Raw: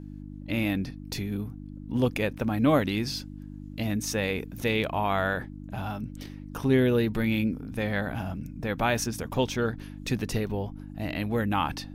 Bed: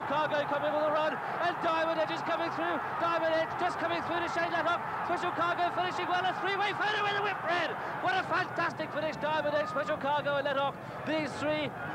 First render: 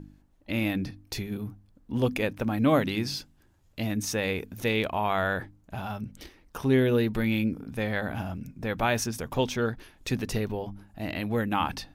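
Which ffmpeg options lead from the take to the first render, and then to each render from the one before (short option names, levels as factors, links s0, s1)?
-af "bandreject=f=50:t=h:w=4,bandreject=f=100:t=h:w=4,bandreject=f=150:t=h:w=4,bandreject=f=200:t=h:w=4,bandreject=f=250:t=h:w=4,bandreject=f=300:t=h:w=4"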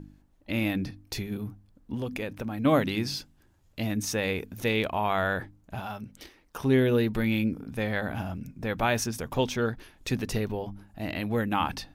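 -filter_complex "[0:a]asettb=1/sr,asplit=3[s0][s1][s2];[s0]atrim=end=1.944[s3];[s1]atrim=start=1.94:end=2.65,asetpts=PTS-STARTPTS,afade=t=in:d=0.004:c=qsin,afade=t=out:st=0.706:d=0.004:c=qsin,acompressor=threshold=0.0316:ratio=3:attack=3.2:release=140:knee=1:detection=peak[s4];[s2]atrim=start=2.646[s5];[s3][s4]acrossfade=d=0.004:c1=hsin:c2=qsin[s6];[s6][s5]acrossfade=d=0.004:c1=qsin:c2=hsin,asettb=1/sr,asplit=3[s7][s8][s9];[s7]atrim=end=5.804[s10];[s8]atrim=start=5.8:end=6.59,asetpts=PTS-STARTPTS,afade=t=in:d=0.004:c=qsin,afade=t=out:st=0.786:d=0.004:c=qsin,lowshelf=f=220:g=-8[s11];[s9]atrim=start=6.586[s12];[s10][s11]acrossfade=d=0.004:c1=hsin:c2=qsin[s13];[s13][s12]acrossfade=d=0.004:c1=qsin:c2=hsin"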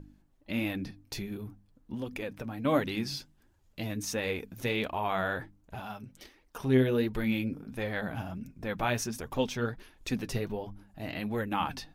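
-af "flanger=delay=1.7:depth=6.4:regen=42:speed=1.4:shape=triangular"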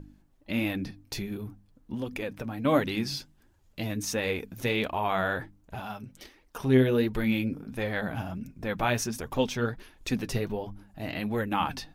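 -af "volume=1.41"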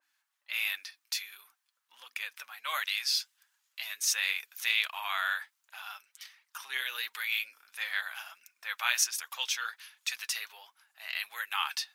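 -af "highpass=f=1200:w=0.5412,highpass=f=1200:w=1.3066,adynamicequalizer=threshold=0.00501:dfrequency=2300:dqfactor=0.7:tfrequency=2300:tqfactor=0.7:attack=5:release=100:ratio=0.375:range=3.5:mode=boostabove:tftype=highshelf"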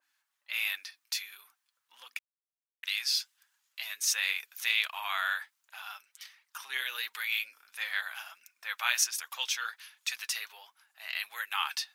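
-filter_complex "[0:a]asplit=3[s0][s1][s2];[s0]atrim=end=2.19,asetpts=PTS-STARTPTS,afade=t=out:st=2.186:d=0.004:c=hsin[s3];[s1]atrim=start=2.19:end=2.83,asetpts=PTS-STARTPTS,volume=0[s4];[s2]atrim=start=2.83,asetpts=PTS-STARTPTS,afade=t=in:d=0.004:c=hsin[s5];[s3][s4][s5]concat=n=3:v=0:a=1"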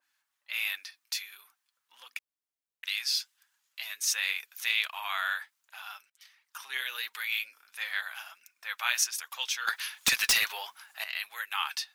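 -filter_complex "[0:a]asettb=1/sr,asplit=3[s0][s1][s2];[s0]atrim=end=9.674[s3];[s1]atrim=start=9.67:end=11.04,asetpts=PTS-STARTPTS,afade=t=in:d=0.004:c=qsin,afade=t=out:st=1.366:d=0.004:c=qsin,aeval=exprs='0.126*sin(PI/2*3.16*val(0)/0.126)':c=same[s4];[s2]atrim=start=11.036[s5];[s3][s4]acrossfade=d=0.004:c1=hsin:c2=qsin[s6];[s6][s5]acrossfade=d=0.004:c1=qsin:c2=hsin,asplit=2[s7][s8];[s7]atrim=end=6.1,asetpts=PTS-STARTPTS,afade=t=out:st=6.096:d=0.004:c=hsin:silence=0.0794328[s9];[s8]atrim=start=6.1,asetpts=PTS-STARTPTS,afade=t=in:d=0.58:c=qsin:silence=0.0794328[s10];[s9][s10]concat=n=2:v=0:a=1"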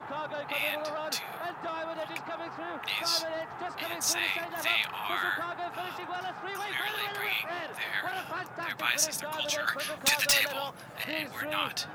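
-filter_complex "[1:a]volume=0.473[s0];[0:a][s0]amix=inputs=2:normalize=0"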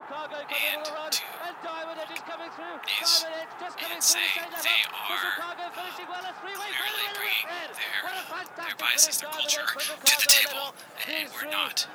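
-af "highpass=260,adynamicequalizer=threshold=0.00708:dfrequency=2500:dqfactor=0.7:tfrequency=2500:tqfactor=0.7:attack=5:release=100:ratio=0.375:range=4:mode=boostabove:tftype=highshelf"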